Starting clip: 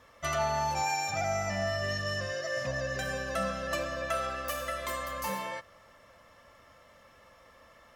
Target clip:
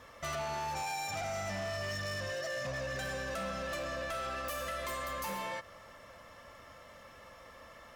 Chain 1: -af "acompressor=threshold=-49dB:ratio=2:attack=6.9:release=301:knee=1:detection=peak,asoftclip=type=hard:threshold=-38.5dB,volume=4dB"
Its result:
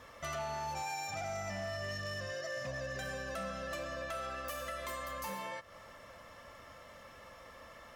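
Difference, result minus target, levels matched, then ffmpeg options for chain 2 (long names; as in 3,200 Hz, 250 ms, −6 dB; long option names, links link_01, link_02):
downward compressor: peak gain reduction +4.5 dB
-af "acompressor=threshold=-40dB:ratio=2:attack=6.9:release=301:knee=1:detection=peak,asoftclip=type=hard:threshold=-38.5dB,volume=4dB"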